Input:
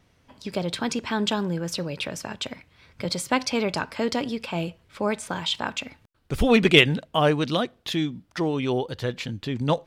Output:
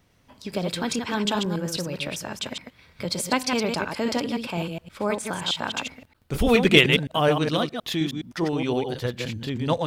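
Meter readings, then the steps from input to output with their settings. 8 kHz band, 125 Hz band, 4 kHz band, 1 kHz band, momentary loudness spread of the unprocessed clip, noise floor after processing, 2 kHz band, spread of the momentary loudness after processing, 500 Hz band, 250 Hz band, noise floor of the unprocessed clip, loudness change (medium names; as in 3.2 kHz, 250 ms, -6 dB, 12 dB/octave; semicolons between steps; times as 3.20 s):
+2.5 dB, 0.0 dB, +1.0 dB, +0.5 dB, 13 LU, -61 dBFS, +0.5 dB, 12 LU, +0.5 dB, 0.0 dB, -63 dBFS, +0.5 dB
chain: chunks repeated in reverse 104 ms, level -4.5 dB; treble shelf 12 kHz +10.5 dB; trim -1 dB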